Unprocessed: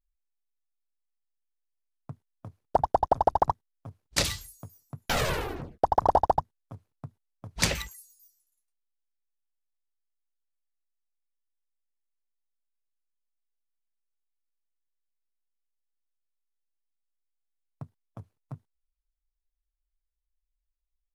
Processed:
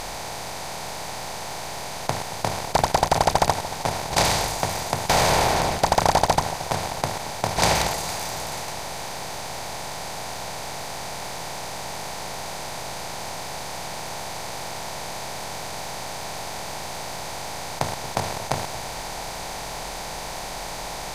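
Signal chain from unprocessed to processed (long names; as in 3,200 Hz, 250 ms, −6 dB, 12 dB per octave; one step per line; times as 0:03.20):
compressor on every frequency bin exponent 0.2
delay that swaps between a low-pass and a high-pass 228 ms, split 990 Hz, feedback 71%, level −12.5 dB
level −1 dB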